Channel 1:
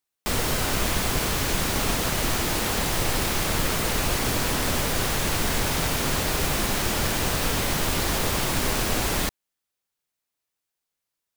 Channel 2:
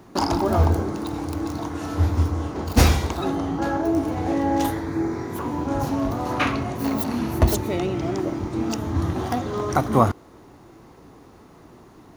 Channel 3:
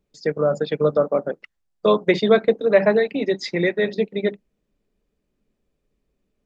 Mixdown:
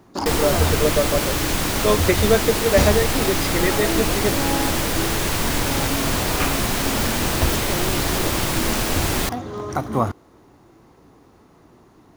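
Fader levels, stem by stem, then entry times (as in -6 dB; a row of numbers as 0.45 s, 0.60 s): +2.5 dB, -3.5 dB, -2.0 dB; 0.00 s, 0.00 s, 0.00 s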